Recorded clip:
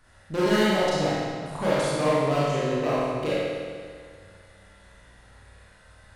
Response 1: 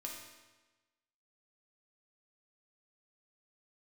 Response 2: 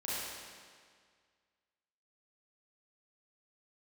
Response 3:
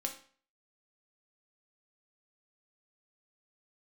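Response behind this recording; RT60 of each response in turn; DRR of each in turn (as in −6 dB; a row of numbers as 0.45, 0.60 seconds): 2; 1.2, 1.9, 0.45 seconds; −2.0, −9.5, 2.5 decibels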